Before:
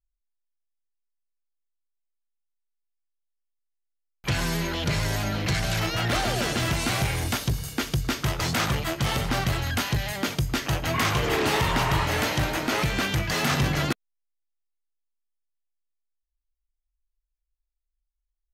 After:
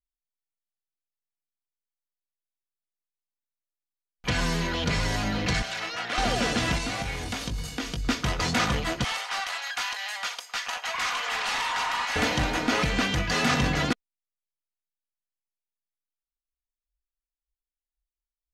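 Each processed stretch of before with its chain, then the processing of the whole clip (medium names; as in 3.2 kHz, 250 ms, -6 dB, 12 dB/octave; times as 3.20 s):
5.62–6.18 s: high-pass 1.2 kHz 6 dB/octave + treble shelf 4.4 kHz -8 dB
6.78–8.08 s: compression, threshold -28 dBFS + doubling 19 ms -6.5 dB
9.04–12.16 s: high-pass 790 Hz 24 dB/octave + hard clipper -25 dBFS
whole clip: low-pass 7.4 kHz 12 dB/octave; comb 4.1 ms, depth 46%; spectral noise reduction 17 dB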